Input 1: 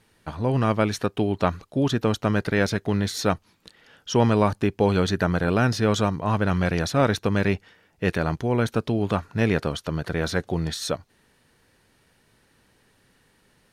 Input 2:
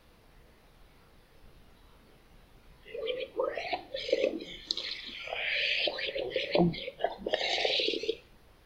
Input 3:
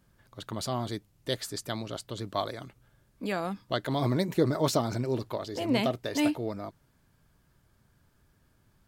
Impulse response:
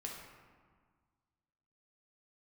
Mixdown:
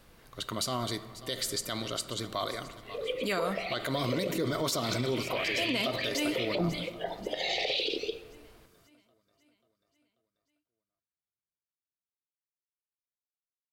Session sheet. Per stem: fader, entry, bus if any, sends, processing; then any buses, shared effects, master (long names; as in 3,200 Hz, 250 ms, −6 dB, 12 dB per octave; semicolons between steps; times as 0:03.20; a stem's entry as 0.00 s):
muted
−0.5 dB, 0.00 s, send −10.5 dB, no echo send, no processing
+2.5 dB, 0.00 s, send −7 dB, echo send −17.5 dB, tilt shelving filter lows −5 dB, about 1,100 Hz; notch comb filter 840 Hz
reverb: on, RT60 1.6 s, pre-delay 4 ms
echo: repeating echo 538 ms, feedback 54%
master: brickwall limiter −21 dBFS, peak gain reduction 12 dB